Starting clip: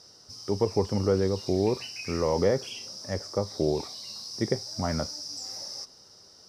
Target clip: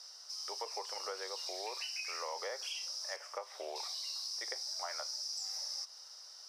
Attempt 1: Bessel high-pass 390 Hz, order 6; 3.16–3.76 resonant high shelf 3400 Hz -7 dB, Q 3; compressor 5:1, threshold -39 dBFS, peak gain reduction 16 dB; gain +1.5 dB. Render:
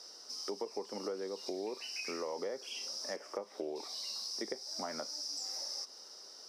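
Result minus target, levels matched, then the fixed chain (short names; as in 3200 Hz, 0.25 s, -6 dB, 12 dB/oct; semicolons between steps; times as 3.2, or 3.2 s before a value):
500 Hz band +6.0 dB
Bessel high-pass 1000 Hz, order 6; 3.16–3.76 resonant high shelf 3400 Hz -7 dB, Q 3; compressor 5:1, threshold -39 dBFS, peak gain reduction 8 dB; gain +1.5 dB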